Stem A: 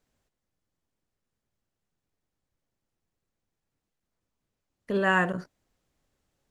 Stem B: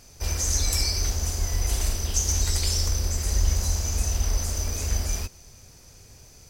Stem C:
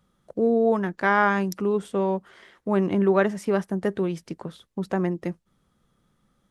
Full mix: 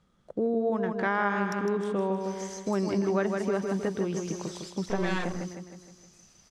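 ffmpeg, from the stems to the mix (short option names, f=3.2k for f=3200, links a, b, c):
-filter_complex "[0:a]aeval=exprs='max(val(0),0)':c=same,volume=2dB[a];[1:a]highpass=f=1.4k:p=1,adelay=2000,volume=-16dB,asplit=2[b][c];[c]volume=-9dB[d];[2:a]volume=-1dB,asplit=3[e][f][g];[f]volume=-6.5dB[h];[g]apad=whole_len=374607[i];[b][i]sidechaingate=range=-33dB:threshold=-57dB:ratio=16:detection=peak[j];[d][h]amix=inputs=2:normalize=0,aecho=0:1:156|312|468|624|780|936|1092:1|0.51|0.26|0.133|0.0677|0.0345|0.0176[k];[a][j][e][k]amix=inputs=4:normalize=0,lowpass=7.3k,acompressor=threshold=-28dB:ratio=2"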